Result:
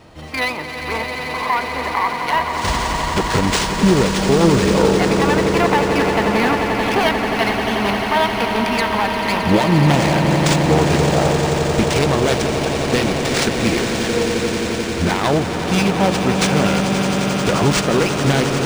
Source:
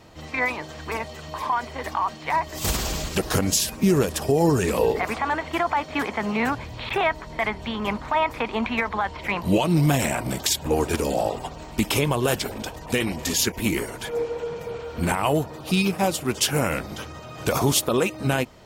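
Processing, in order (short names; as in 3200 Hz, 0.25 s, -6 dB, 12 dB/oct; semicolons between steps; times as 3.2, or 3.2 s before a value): self-modulated delay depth 0.19 ms; swelling echo 88 ms, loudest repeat 8, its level -10.5 dB; decimation joined by straight lines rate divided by 3×; gain +5 dB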